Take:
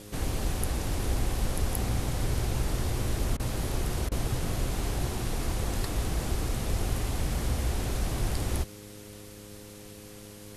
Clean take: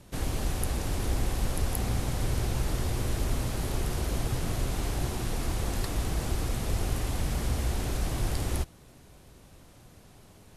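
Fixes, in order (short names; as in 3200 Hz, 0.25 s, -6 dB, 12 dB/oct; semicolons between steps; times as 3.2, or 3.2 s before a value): de-hum 103.4 Hz, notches 5; interpolate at 3.37/4.09, 25 ms; noise print and reduce 7 dB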